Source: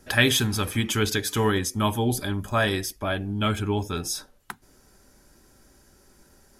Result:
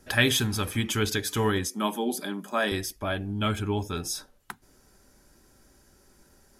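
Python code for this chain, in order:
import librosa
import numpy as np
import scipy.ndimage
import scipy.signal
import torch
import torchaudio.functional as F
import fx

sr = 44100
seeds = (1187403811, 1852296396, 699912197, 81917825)

y = fx.ellip_highpass(x, sr, hz=180.0, order=4, stop_db=40, at=(1.67, 2.72))
y = F.gain(torch.from_numpy(y), -2.5).numpy()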